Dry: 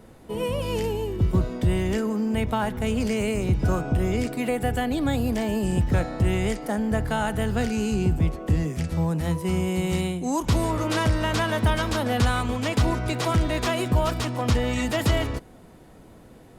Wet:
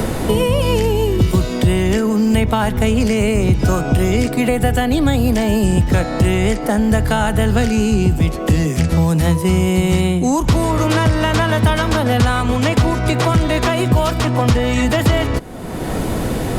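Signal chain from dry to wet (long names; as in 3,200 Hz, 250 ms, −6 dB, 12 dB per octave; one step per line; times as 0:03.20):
multiband upward and downward compressor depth 100%
level +8 dB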